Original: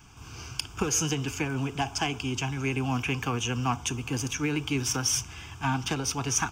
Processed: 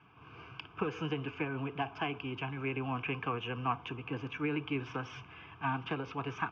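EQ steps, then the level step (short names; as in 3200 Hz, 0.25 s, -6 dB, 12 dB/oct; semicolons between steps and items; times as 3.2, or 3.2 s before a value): air absorption 62 m; speaker cabinet 210–2400 Hz, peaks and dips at 240 Hz -9 dB, 360 Hz -5 dB, 580 Hz -3 dB, 820 Hz -7 dB, 1900 Hz -8 dB; notch 1400 Hz, Q 11; 0.0 dB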